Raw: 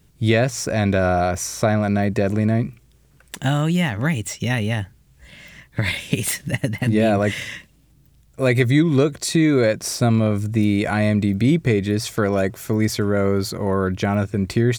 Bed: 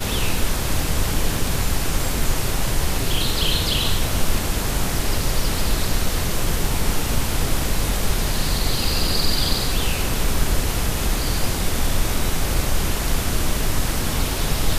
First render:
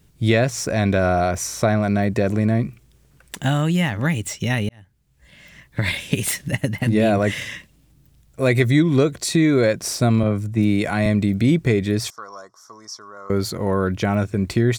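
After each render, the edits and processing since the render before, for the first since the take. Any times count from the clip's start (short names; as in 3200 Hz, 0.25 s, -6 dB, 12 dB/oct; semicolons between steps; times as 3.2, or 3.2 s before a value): 4.69–5.85 fade in; 10.23–11.06 three-band expander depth 70%; 12.1–13.3 double band-pass 2500 Hz, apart 2.3 oct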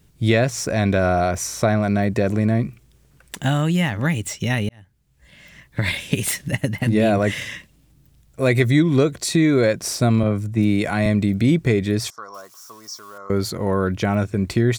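12.34–13.18 switching spikes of -39.5 dBFS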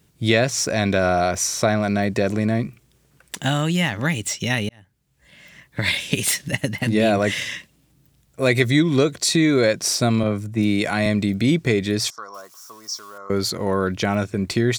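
HPF 140 Hz 6 dB/oct; dynamic EQ 4700 Hz, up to +6 dB, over -42 dBFS, Q 0.71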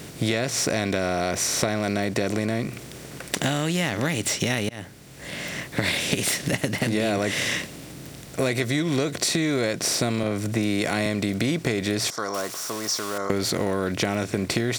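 per-bin compression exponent 0.6; compressor 5:1, threshold -21 dBFS, peak gain reduction 11 dB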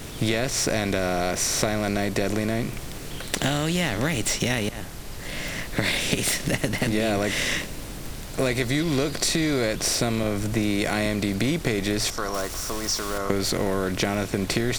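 add bed -16.5 dB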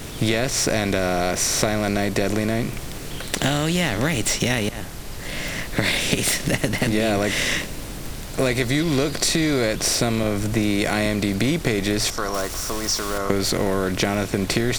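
gain +3 dB; limiter -3 dBFS, peak gain reduction 1.5 dB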